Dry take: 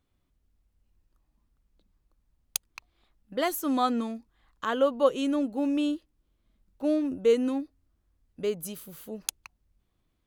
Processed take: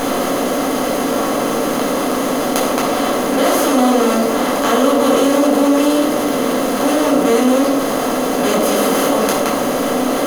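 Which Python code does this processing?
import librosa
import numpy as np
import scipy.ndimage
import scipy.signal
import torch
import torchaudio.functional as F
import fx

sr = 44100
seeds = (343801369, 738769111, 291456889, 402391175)

y = fx.bin_compress(x, sr, power=0.2)
y = fx.room_shoebox(y, sr, seeds[0], volume_m3=1000.0, walls='furnished', distance_m=8.3)
y = fx.env_flatten(y, sr, amount_pct=50)
y = y * 10.0 ** (-6.5 / 20.0)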